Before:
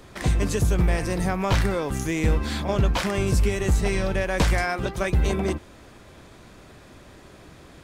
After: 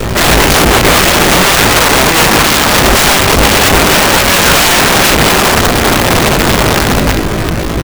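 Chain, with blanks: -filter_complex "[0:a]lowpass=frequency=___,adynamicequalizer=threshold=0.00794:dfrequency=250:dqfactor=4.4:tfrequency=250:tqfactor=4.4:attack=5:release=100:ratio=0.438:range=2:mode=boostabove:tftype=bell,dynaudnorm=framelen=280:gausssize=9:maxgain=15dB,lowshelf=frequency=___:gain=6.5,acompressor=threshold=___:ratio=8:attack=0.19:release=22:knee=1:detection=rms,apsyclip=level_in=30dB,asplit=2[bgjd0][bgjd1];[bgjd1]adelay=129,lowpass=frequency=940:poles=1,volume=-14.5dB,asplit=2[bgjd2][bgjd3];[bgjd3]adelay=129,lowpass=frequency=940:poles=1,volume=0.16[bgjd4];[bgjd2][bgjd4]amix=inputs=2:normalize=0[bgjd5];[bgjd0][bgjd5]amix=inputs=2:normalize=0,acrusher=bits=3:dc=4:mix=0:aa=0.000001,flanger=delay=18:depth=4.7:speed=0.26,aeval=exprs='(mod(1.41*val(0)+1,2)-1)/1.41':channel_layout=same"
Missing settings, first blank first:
2400, 400, -15dB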